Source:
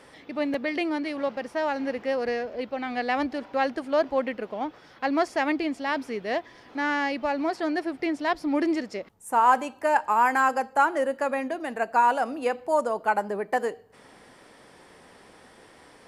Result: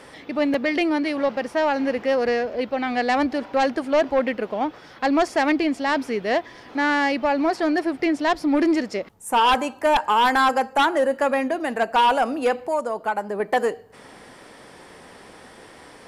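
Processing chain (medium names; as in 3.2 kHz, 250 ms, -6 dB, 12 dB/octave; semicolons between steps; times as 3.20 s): 12.58–13.40 s: compression 1.5:1, threshold -39 dBFS, peak gain reduction 7.5 dB; sine folder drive 8 dB, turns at -8.5 dBFS; trim -5 dB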